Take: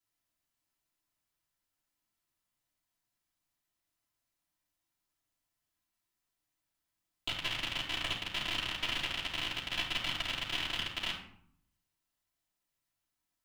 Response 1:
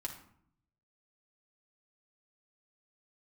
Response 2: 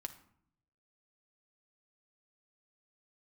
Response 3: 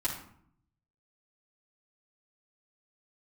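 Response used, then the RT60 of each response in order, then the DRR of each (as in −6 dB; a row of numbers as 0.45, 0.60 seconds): 3; 0.65, 0.65, 0.65 seconds; −1.0, 6.0, −8.5 decibels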